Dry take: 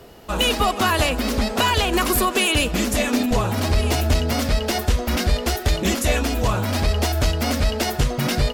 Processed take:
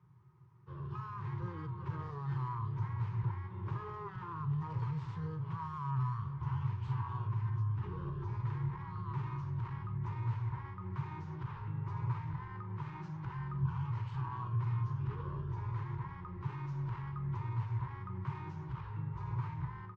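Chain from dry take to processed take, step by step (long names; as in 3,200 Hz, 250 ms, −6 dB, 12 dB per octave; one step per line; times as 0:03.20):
stylus tracing distortion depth 0.097 ms
high-pass filter 150 Hz 12 dB per octave
flat-topped bell 820 Hz −12 dB
automatic gain control gain up to 11 dB
brickwall limiter −14 dBFS, peak gain reduction 12 dB
formant filter u
double-tracking delay 19 ms −13 dB
wrong playback speed 78 rpm record played at 33 rpm
level −3.5 dB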